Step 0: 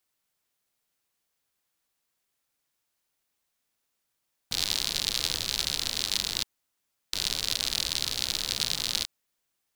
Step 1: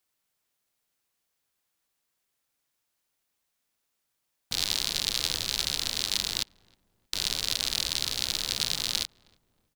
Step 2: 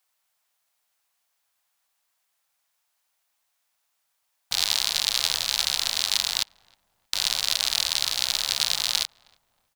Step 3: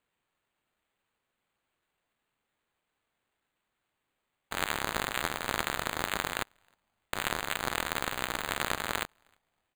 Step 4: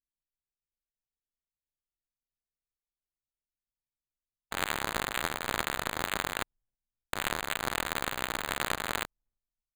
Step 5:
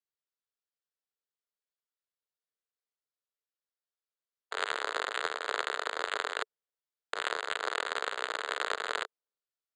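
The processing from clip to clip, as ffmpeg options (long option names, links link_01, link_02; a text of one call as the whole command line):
ffmpeg -i in.wav -filter_complex "[0:a]asplit=2[link_01][link_02];[link_02]adelay=315,lowpass=frequency=930:poles=1,volume=-23dB,asplit=2[link_03][link_04];[link_04]adelay=315,lowpass=frequency=930:poles=1,volume=0.46,asplit=2[link_05][link_06];[link_06]adelay=315,lowpass=frequency=930:poles=1,volume=0.46[link_07];[link_01][link_03][link_05][link_07]amix=inputs=4:normalize=0" out.wav
ffmpeg -i in.wav -af "lowshelf=frequency=520:width_type=q:width=1.5:gain=-10.5,volume=4.5dB" out.wav
ffmpeg -i in.wav -af "acrusher=samples=8:mix=1:aa=0.000001,volume=-8dB" out.wav
ffmpeg -i in.wav -af "anlmdn=0.1" out.wav
ffmpeg -i in.wav -af "highpass=frequency=430:width=0.5412,highpass=frequency=430:width=1.3066,equalizer=frequency=440:width_type=q:width=4:gain=7,equalizer=frequency=830:width_type=q:width=4:gain=-5,equalizer=frequency=1400:width_type=q:width=4:gain=3,equalizer=frequency=2400:width_type=q:width=4:gain=-6,equalizer=frequency=6100:width_type=q:width=4:gain=-7,lowpass=frequency=7000:width=0.5412,lowpass=frequency=7000:width=1.3066" out.wav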